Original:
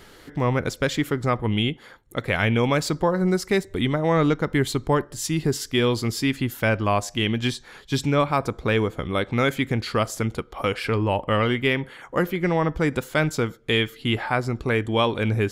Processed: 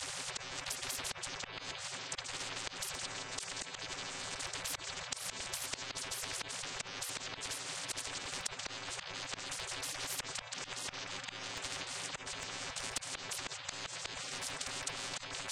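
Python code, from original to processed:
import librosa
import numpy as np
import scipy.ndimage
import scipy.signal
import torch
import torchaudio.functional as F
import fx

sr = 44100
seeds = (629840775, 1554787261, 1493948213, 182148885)

y = fx.chord_vocoder(x, sr, chord='bare fifth', root=57)
y = fx.hum_notches(y, sr, base_hz=60, count=3)
y = fx.over_compress(y, sr, threshold_db=-27.0, ratio=-1.0)
y = fx.echo_stepped(y, sr, ms=166, hz=2900.0, octaves=-1.4, feedback_pct=70, wet_db=-7)
y = fx.spec_gate(y, sr, threshold_db=-30, keep='weak')
y = fx.high_shelf(y, sr, hz=4700.0, db=8.0)
y = fx.auto_swell(y, sr, attack_ms=696.0)
y = fx.spectral_comp(y, sr, ratio=10.0)
y = F.gain(torch.from_numpy(y), 18.0).numpy()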